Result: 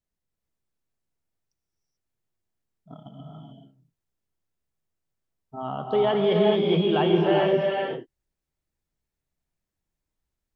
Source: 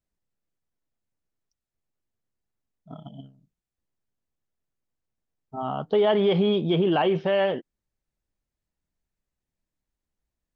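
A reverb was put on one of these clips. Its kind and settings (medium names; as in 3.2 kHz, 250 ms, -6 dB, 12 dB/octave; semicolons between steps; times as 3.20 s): gated-style reverb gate 460 ms rising, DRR -1 dB; trim -2.5 dB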